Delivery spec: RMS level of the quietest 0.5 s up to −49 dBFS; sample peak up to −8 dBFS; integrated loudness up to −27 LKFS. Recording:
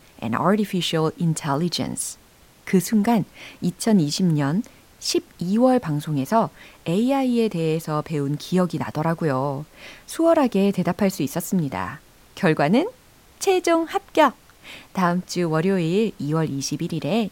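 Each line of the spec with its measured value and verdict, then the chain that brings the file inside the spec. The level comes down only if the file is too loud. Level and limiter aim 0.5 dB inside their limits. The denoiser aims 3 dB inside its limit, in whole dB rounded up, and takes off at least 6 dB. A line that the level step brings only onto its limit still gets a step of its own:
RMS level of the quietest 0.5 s −52 dBFS: in spec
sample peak −4.5 dBFS: out of spec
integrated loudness −22.0 LKFS: out of spec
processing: level −5.5 dB

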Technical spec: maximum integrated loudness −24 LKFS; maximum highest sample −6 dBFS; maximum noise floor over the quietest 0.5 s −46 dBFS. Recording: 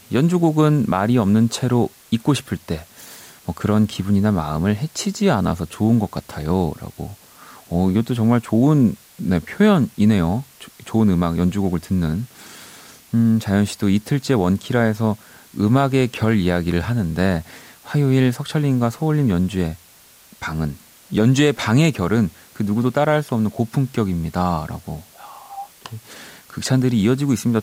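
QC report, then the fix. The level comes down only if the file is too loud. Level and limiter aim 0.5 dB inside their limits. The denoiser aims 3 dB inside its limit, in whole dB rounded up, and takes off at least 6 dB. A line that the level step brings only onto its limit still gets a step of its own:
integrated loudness −19.5 LKFS: out of spec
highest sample −5.5 dBFS: out of spec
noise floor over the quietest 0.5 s −49 dBFS: in spec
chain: level −5 dB

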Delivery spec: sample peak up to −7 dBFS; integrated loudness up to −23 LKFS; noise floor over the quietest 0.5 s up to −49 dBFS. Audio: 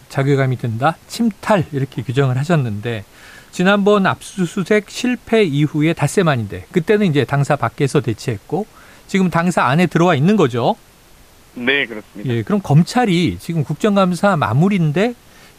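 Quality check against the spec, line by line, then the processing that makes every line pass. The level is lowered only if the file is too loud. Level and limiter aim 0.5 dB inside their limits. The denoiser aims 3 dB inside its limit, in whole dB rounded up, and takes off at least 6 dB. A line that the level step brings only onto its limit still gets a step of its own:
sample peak −3.0 dBFS: out of spec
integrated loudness −16.5 LKFS: out of spec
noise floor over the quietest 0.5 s −46 dBFS: out of spec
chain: level −7 dB

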